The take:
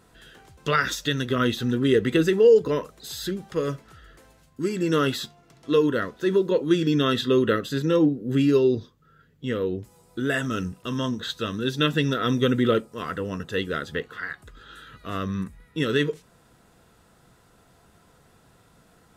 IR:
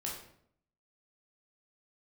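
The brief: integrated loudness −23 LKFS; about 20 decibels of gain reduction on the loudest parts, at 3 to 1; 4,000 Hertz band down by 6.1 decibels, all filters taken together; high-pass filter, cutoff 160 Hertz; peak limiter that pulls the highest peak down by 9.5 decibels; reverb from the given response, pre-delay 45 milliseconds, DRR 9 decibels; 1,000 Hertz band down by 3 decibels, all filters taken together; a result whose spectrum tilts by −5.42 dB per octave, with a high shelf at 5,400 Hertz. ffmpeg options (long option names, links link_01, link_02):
-filter_complex "[0:a]highpass=160,equalizer=frequency=1000:width_type=o:gain=-3.5,equalizer=frequency=4000:width_type=o:gain=-5,highshelf=frequency=5400:gain=-7,acompressor=threshold=-41dB:ratio=3,alimiter=level_in=10.5dB:limit=-24dB:level=0:latency=1,volume=-10.5dB,asplit=2[link_01][link_02];[1:a]atrim=start_sample=2205,adelay=45[link_03];[link_02][link_03]afir=irnorm=-1:irlink=0,volume=-10dB[link_04];[link_01][link_04]amix=inputs=2:normalize=0,volume=21dB"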